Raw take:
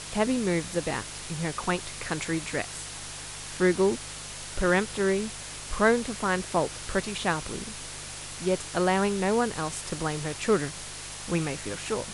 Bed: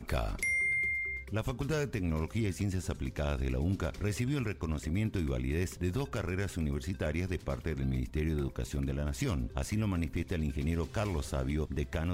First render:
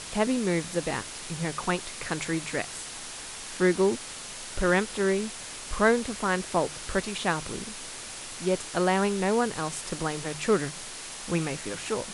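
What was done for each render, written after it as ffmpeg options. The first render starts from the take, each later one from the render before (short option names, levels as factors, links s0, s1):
-af "bandreject=f=50:t=h:w=4,bandreject=f=100:t=h:w=4,bandreject=f=150:t=h:w=4"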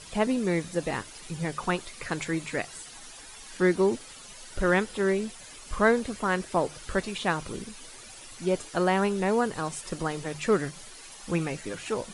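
-af "afftdn=nr=11:nf=-40"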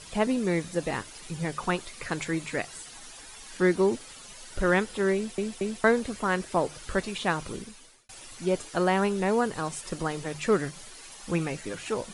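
-filter_complex "[0:a]asplit=5[s0][s1][s2][s3][s4];[s0]atrim=end=5.382[s5];[s1]atrim=start=5.148:end=5.382[s6];[s2]atrim=start=5.148:end=5.382[s7];[s3]atrim=start=5.838:end=8.09,asetpts=PTS-STARTPTS,afade=t=out:st=1.682:d=0.57[s8];[s4]atrim=start=8.09,asetpts=PTS-STARTPTS,afade=t=in:d=0.004:c=hsin[s9];[s5][s6]acrossfade=d=0.004:c1=hsin:c2=hsin[s10];[s10][s7]acrossfade=d=0.004:c1=hsin:c2=hsin[s11];[s8][s9]concat=n=2:v=0:a=1[s12];[s11][s12]acrossfade=d=0.004:c1=hsin:c2=hsin"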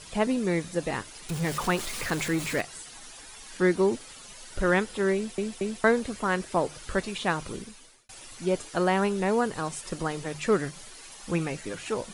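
-filter_complex "[0:a]asettb=1/sr,asplit=3[s0][s1][s2];[s0]atrim=end=1.294[s3];[s1]atrim=start=1.29:end=2.61,asetpts=PTS-STARTPTS,afade=t=in:d=0.004:c=qsin,afade=t=out:st=1.316:d=0.004:c=qsin,aeval=exprs='val(0)+0.5*0.0266*sgn(val(0))':c=same[s4];[s2]atrim=start=2.606[s5];[s3][s4]acrossfade=d=0.004:c1=hsin:c2=qsin[s6];[s6][s5]acrossfade=d=0.004:c1=qsin:c2=hsin"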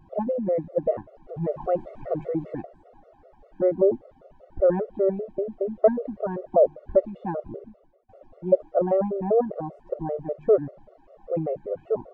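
-af "lowpass=f=600:t=q:w=5.5,afftfilt=real='re*gt(sin(2*PI*5.1*pts/sr)*(1-2*mod(floor(b*sr/1024/370),2)),0)':imag='im*gt(sin(2*PI*5.1*pts/sr)*(1-2*mod(floor(b*sr/1024/370),2)),0)':win_size=1024:overlap=0.75"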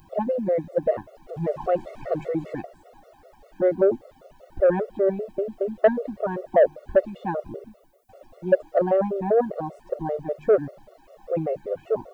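-af "asoftclip=type=tanh:threshold=0.422,crystalizer=i=8.5:c=0"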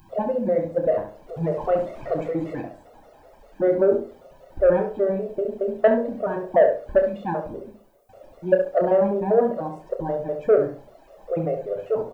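-filter_complex "[0:a]asplit=2[s0][s1];[s1]adelay=30,volume=0.398[s2];[s0][s2]amix=inputs=2:normalize=0,asplit=2[s3][s4];[s4]adelay=68,lowpass=f=1900:p=1,volume=0.531,asplit=2[s5][s6];[s6]adelay=68,lowpass=f=1900:p=1,volume=0.28,asplit=2[s7][s8];[s8]adelay=68,lowpass=f=1900:p=1,volume=0.28,asplit=2[s9][s10];[s10]adelay=68,lowpass=f=1900:p=1,volume=0.28[s11];[s3][s5][s7][s9][s11]amix=inputs=5:normalize=0"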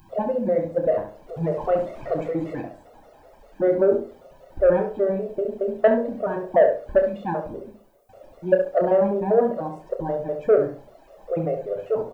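-af anull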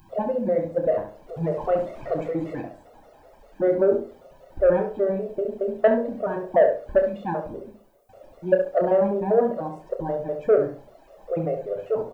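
-af "volume=0.891"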